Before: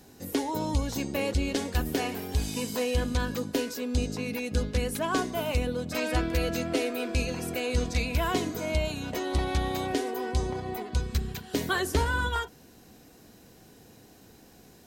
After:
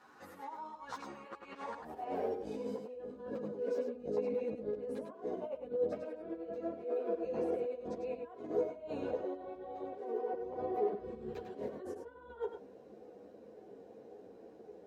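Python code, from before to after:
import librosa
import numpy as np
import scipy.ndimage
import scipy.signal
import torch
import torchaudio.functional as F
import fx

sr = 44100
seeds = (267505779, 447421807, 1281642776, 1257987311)

p1 = fx.dynamic_eq(x, sr, hz=900.0, q=0.82, threshold_db=-41.0, ratio=4.0, max_db=3)
p2 = fx.over_compress(p1, sr, threshold_db=-34.0, ratio=-0.5)
p3 = fx.filter_sweep_bandpass(p2, sr, from_hz=1200.0, to_hz=490.0, start_s=1.54, end_s=2.31, q=3.5)
p4 = p3 + fx.echo_single(p3, sr, ms=100, db=-6.5, dry=0)
p5 = fx.ensemble(p4, sr)
y = p5 * librosa.db_to_amplitude(6.0)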